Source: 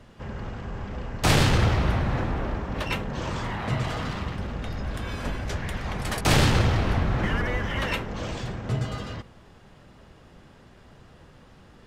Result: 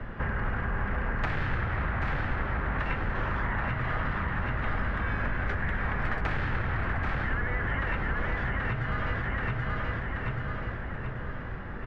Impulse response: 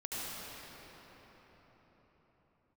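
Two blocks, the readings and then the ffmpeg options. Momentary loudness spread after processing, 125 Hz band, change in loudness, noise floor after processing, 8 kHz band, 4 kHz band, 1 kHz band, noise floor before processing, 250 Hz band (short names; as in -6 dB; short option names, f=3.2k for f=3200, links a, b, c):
4 LU, -5.0 dB, -4.5 dB, -36 dBFS, under -30 dB, -14.5 dB, -1.5 dB, -52 dBFS, -6.0 dB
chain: -filter_complex "[0:a]aecho=1:1:780|1560|2340|3120|3900:0.447|0.197|0.0865|0.0381|0.0167,acompressor=threshold=-31dB:ratio=6,lowpass=f=1.7k:t=q:w=2.5,acrossover=split=110|1000[a][b][c];[a]acompressor=threshold=-46dB:ratio=4[d];[b]acompressor=threshold=-45dB:ratio=4[e];[c]acompressor=threshold=-41dB:ratio=4[f];[d][e][f]amix=inputs=3:normalize=0,lowshelf=f=67:g=11,volume=8dB"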